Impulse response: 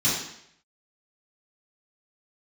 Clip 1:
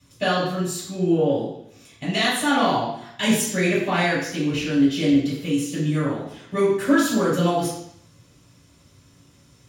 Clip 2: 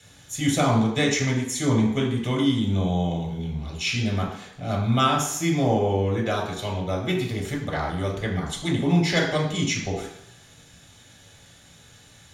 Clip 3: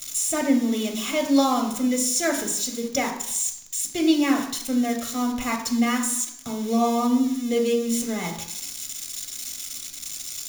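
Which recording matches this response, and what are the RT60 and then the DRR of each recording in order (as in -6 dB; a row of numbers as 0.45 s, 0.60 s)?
1; 0.70 s, 0.70 s, 0.70 s; -10.5 dB, -2.0 dB, 3.0 dB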